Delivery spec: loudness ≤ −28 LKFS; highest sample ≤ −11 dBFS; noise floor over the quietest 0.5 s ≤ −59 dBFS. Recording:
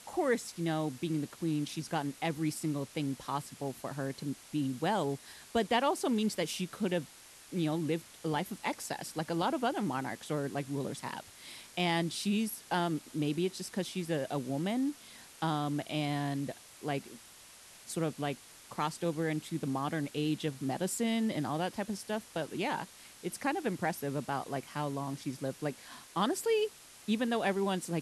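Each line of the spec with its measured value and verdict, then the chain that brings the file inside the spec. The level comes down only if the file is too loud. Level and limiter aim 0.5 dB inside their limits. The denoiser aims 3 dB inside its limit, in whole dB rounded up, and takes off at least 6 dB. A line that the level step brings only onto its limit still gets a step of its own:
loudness −34.5 LKFS: in spec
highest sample −18.0 dBFS: in spec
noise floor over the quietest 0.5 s −55 dBFS: out of spec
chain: broadband denoise 7 dB, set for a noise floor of −55 dBFS

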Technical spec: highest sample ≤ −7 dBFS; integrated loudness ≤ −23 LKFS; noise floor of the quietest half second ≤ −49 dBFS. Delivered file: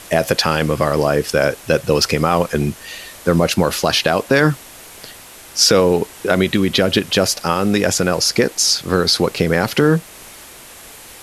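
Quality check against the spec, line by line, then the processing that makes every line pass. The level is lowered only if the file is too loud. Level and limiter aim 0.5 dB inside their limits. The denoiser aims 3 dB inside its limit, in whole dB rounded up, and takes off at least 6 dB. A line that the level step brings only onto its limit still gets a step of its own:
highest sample −1.5 dBFS: out of spec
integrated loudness −16.5 LKFS: out of spec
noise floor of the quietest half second −39 dBFS: out of spec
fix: broadband denoise 6 dB, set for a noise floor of −39 dBFS
level −7 dB

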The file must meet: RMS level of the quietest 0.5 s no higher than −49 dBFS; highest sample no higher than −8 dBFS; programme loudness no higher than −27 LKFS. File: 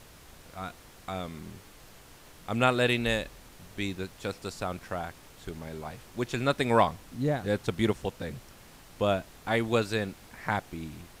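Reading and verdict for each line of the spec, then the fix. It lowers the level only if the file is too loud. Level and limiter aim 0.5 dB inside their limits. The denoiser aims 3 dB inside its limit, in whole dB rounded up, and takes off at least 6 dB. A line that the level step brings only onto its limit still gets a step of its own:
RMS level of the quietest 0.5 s −52 dBFS: in spec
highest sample −9.5 dBFS: in spec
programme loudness −30.5 LKFS: in spec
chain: no processing needed

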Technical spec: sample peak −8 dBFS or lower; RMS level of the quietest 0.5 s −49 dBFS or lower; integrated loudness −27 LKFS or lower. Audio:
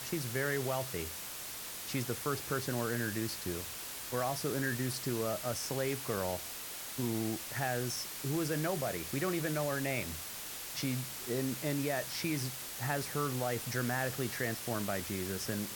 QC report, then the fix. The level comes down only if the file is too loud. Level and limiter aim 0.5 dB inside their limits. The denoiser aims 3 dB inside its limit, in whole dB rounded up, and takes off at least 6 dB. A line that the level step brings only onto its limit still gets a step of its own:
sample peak −19.5 dBFS: in spec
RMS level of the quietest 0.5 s −43 dBFS: out of spec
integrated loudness −35.5 LKFS: in spec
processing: broadband denoise 9 dB, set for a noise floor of −43 dBFS

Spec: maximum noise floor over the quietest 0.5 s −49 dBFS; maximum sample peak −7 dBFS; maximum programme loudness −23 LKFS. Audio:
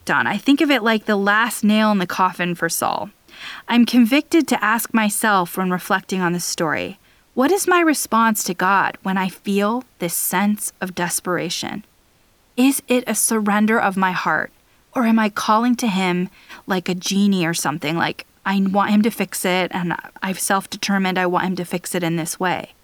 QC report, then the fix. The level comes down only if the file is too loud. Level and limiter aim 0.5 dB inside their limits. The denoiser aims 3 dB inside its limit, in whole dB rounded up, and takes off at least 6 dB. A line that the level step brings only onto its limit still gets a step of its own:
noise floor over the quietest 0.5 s −57 dBFS: in spec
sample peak −5.0 dBFS: out of spec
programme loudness −19.0 LKFS: out of spec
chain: level −4.5 dB

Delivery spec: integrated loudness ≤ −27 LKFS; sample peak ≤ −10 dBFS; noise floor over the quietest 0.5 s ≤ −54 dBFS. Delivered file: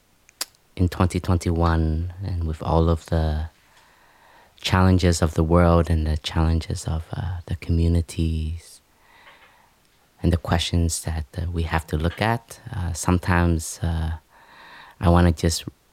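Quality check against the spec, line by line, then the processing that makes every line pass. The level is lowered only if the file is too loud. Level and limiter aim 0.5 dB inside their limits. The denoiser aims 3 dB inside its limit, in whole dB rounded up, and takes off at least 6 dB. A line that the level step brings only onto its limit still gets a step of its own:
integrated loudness −23.0 LKFS: out of spec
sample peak −3.0 dBFS: out of spec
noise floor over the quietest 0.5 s −60 dBFS: in spec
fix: level −4.5 dB
brickwall limiter −10.5 dBFS

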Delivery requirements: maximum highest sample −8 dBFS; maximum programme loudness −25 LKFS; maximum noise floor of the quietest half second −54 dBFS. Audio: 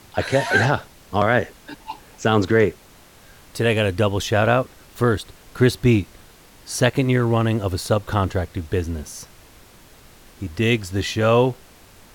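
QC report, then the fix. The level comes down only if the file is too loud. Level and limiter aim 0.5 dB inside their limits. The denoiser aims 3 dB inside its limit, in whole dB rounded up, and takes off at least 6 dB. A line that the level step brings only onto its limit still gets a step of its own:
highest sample −3.0 dBFS: out of spec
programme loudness −20.5 LKFS: out of spec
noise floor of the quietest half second −48 dBFS: out of spec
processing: broadband denoise 6 dB, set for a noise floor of −48 dBFS
level −5 dB
brickwall limiter −8.5 dBFS

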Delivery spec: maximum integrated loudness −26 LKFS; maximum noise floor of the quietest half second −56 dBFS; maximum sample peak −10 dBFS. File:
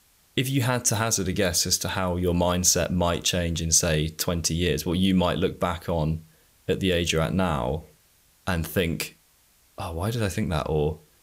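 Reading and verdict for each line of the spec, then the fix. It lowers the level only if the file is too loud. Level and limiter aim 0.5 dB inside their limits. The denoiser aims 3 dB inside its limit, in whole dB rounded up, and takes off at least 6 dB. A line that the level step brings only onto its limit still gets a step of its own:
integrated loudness −24.5 LKFS: out of spec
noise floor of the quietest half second −61 dBFS: in spec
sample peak −6.5 dBFS: out of spec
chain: level −2 dB
brickwall limiter −10.5 dBFS

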